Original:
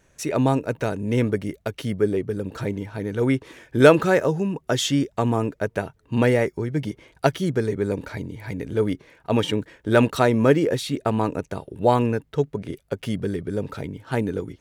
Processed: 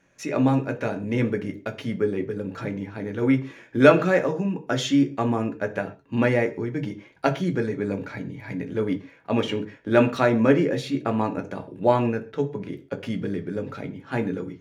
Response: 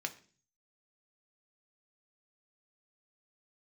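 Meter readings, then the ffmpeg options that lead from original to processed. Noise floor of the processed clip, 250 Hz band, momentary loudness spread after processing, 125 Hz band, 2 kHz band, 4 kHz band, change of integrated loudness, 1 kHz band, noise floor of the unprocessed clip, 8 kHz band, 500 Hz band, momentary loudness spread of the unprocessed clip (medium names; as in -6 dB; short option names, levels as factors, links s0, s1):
-54 dBFS, 0.0 dB, 12 LU, -3.0 dB, -0.5 dB, -4.0 dB, -1.5 dB, -1.5 dB, -62 dBFS, -7.0 dB, -2.0 dB, 12 LU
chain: -filter_complex "[0:a]aemphasis=mode=reproduction:type=cd[s0];[1:a]atrim=start_sample=2205,atrim=end_sample=6615[s1];[s0][s1]afir=irnorm=-1:irlink=0,volume=0.891"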